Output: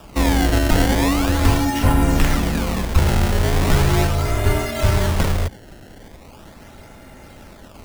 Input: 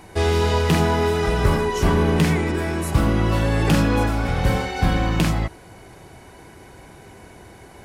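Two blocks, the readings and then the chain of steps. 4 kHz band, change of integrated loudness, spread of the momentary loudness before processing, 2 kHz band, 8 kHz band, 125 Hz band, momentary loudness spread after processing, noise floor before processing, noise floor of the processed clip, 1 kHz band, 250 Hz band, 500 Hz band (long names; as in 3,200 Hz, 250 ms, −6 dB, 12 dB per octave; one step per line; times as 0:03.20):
+2.5 dB, +1.5 dB, 4 LU, +1.0 dB, +5.5 dB, +1.5 dB, 4 LU, −45 dBFS, −43 dBFS, +0.5 dB, +1.0 dB, −2.0 dB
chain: sample-and-hold swept by an LFO 20×, swing 160% 0.39 Hz
frequency shifter −140 Hz
level +2.5 dB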